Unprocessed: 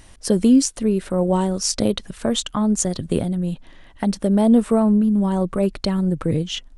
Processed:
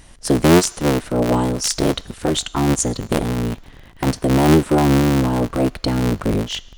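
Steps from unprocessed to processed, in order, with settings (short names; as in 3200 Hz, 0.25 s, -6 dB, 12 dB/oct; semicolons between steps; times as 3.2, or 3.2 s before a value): cycle switcher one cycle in 3, inverted; on a send: HPF 870 Hz 12 dB/oct + reverb RT60 1.0 s, pre-delay 3 ms, DRR 19.5 dB; on the sum: gain +1.5 dB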